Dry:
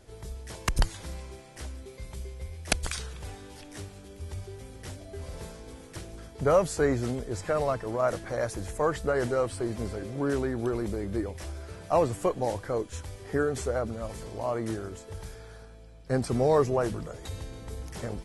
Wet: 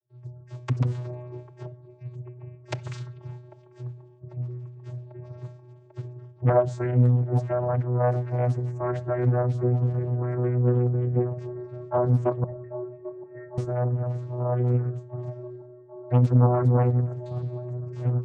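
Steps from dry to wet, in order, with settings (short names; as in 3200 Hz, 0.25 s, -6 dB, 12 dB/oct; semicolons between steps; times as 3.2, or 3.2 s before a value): spectral gate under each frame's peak -30 dB strong; 0.83–1.71 bell 490 Hz +7.5 dB 2.7 oct; expander -36 dBFS; vocoder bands 16, square 123 Hz; 12.44–13.58 vocal tract filter e; band-limited delay 0.794 s, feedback 78%, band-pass 530 Hz, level -15.5 dB; reverb RT60 0.50 s, pre-delay 6 ms, DRR 13.5 dB; Doppler distortion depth 0.96 ms; gain +5 dB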